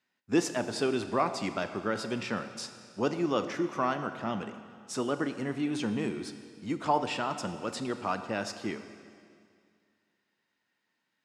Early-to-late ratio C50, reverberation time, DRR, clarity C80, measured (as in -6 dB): 10.0 dB, 2.2 s, 9.0 dB, 11.0 dB